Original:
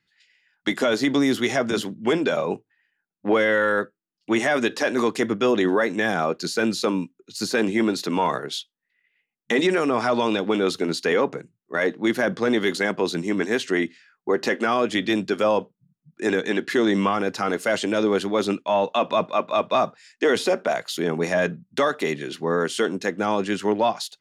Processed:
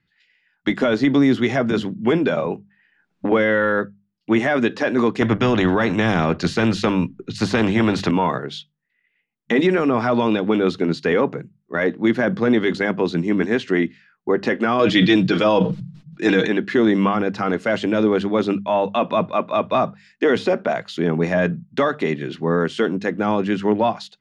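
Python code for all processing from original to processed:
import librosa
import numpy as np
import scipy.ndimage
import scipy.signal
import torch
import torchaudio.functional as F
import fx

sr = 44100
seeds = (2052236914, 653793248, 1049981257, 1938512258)

y = fx.chain(x, sr, fx.bass_treble(bass_db=-4, treble_db=-1),
    fx.band_squash(depth_pct=100), at=(2.46, 3.32))
y = fx.chain(y, sr, fx.tilt_eq(slope=-2.5),
    fx.spectral_comp(ratio=2.0), at=(5.21, 8.11))
y = fx.chain(y, sr, fx.peak_eq(hz=4300.0, db=10.0, octaves=1.5),
    fx.comb(ms=6.3, depth=0.61),
    fx.sustainer(db_per_s=88.0), at=(14.79, 16.47))
y = scipy.signal.sosfilt(scipy.signal.butter(2, 6400.0, 'lowpass', fs=sr, output='sos'), y)
y = fx.bass_treble(y, sr, bass_db=9, treble_db=-9)
y = fx.hum_notches(y, sr, base_hz=50, count=4)
y = F.gain(torch.from_numpy(y), 1.5).numpy()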